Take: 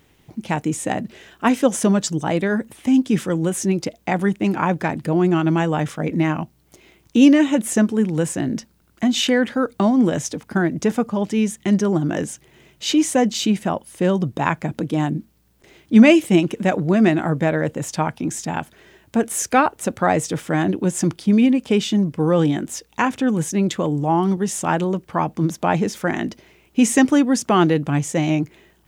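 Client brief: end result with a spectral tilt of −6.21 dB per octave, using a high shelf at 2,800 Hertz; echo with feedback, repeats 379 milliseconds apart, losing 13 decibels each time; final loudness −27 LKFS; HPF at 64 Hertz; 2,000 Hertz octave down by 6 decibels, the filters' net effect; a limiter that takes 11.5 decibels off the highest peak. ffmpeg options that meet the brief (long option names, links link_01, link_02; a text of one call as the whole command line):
ffmpeg -i in.wav -af "highpass=64,equalizer=frequency=2000:width_type=o:gain=-5.5,highshelf=frequency=2800:gain=-6,alimiter=limit=-13dB:level=0:latency=1,aecho=1:1:379|758|1137:0.224|0.0493|0.0108,volume=-4dB" out.wav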